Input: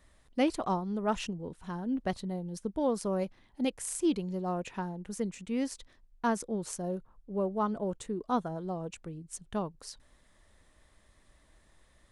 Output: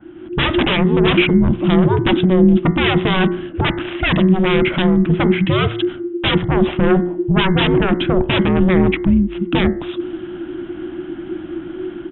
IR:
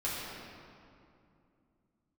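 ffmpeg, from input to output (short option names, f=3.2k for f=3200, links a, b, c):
-af "aresample=8000,aeval=exprs='0.158*sin(PI/2*10*val(0)/0.158)':c=same,aresample=44100,dynaudnorm=f=140:g=3:m=11dB,lowshelf=f=280:g=9,bandreject=f=64.54:t=h:w=4,bandreject=f=129.08:t=h:w=4,bandreject=f=193.62:t=h:w=4,bandreject=f=258.16:t=h:w=4,bandreject=f=322.7:t=h:w=4,bandreject=f=387.24:t=h:w=4,bandreject=f=451.78:t=h:w=4,bandreject=f=516.32:t=h:w=4,bandreject=f=580.86:t=h:w=4,bandreject=f=645.4:t=h:w=4,bandreject=f=709.94:t=h:w=4,bandreject=f=774.48:t=h:w=4,bandreject=f=839.02:t=h:w=4,bandreject=f=903.56:t=h:w=4,bandreject=f=968.1:t=h:w=4,bandreject=f=1.03264k:t=h:w=4,bandreject=f=1.09718k:t=h:w=4,bandreject=f=1.16172k:t=h:w=4,bandreject=f=1.22626k:t=h:w=4,bandreject=f=1.2908k:t=h:w=4,bandreject=f=1.35534k:t=h:w=4,bandreject=f=1.41988k:t=h:w=4,bandreject=f=1.48442k:t=h:w=4,bandreject=f=1.54896k:t=h:w=4,bandreject=f=1.6135k:t=h:w=4,bandreject=f=1.67804k:t=h:w=4,bandreject=f=1.74258k:t=h:w=4,bandreject=f=1.80712k:t=h:w=4,bandreject=f=1.87166k:t=h:w=4,bandreject=f=1.9362k:t=h:w=4,bandreject=f=2.00074k:t=h:w=4,bandreject=f=2.06528k:t=h:w=4,bandreject=f=2.12982k:t=h:w=4,bandreject=f=2.19436k:t=h:w=4,bandreject=f=2.2589k:t=h:w=4,bandreject=f=2.32344k:t=h:w=4,bandreject=f=2.38798k:t=h:w=4,bandreject=f=2.45252k:t=h:w=4,bandreject=f=2.51706k:t=h:w=4,afreqshift=-370,adynamicequalizer=threshold=0.0398:dfrequency=2800:dqfactor=0.7:tfrequency=2800:tqfactor=0.7:attack=5:release=100:ratio=0.375:range=4:mode=boostabove:tftype=highshelf,volume=-8dB"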